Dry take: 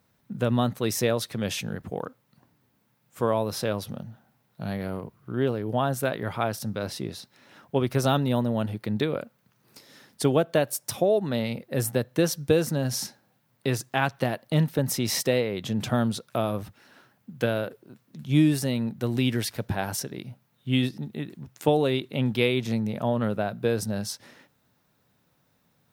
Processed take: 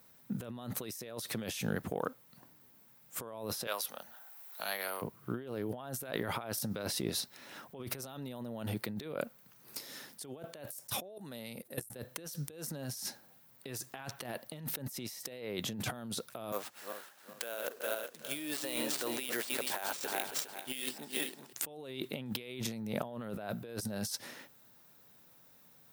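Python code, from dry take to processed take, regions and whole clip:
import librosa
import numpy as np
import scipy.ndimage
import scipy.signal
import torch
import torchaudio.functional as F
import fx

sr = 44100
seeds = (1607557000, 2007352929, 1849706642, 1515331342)

y = fx.chain(x, sr, fx.highpass(hz=870.0, slope=12),
    fx.high_shelf(hz=8800.0, db=5.5),
    fx.band_squash(depth_pct=40), at=(3.67, 5.02))
y = fx.chain(y, sr, fx.peak_eq(hz=10000.0, db=13.5, octaves=1.0),
    fx.level_steps(step_db=23), at=(11.16, 11.96))
y = fx.chain(y, sr, fx.reverse_delay_fb(ms=204, feedback_pct=54, wet_db=-9.0),
    fx.highpass(hz=540.0, slope=12),
    fx.sample_hold(seeds[0], rate_hz=13000.0, jitter_pct=0), at=(16.52, 21.53))
y = fx.highpass(y, sr, hz=210.0, slope=6)
y = fx.high_shelf(y, sr, hz=7700.0, db=11.0)
y = fx.over_compress(y, sr, threshold_db=-36.0, ratio=-1.0)
y = F.gain(torch.from_numpy(y), -4.5).numpy()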